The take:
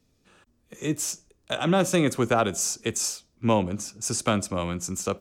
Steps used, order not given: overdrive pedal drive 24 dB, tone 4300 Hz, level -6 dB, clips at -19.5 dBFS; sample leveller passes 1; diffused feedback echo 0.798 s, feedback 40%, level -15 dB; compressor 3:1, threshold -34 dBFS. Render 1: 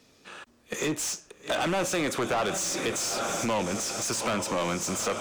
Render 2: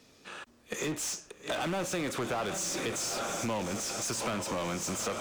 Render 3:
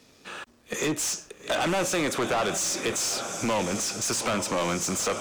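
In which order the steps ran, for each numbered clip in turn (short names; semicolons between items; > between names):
diffused feedback echo > sample leveller > compressor > overdrive pedal; diffused feedback echo > sample leveller > overdrive pedal > compressor; compressor > diffused feedback echo > overdrive pedal > sample leveller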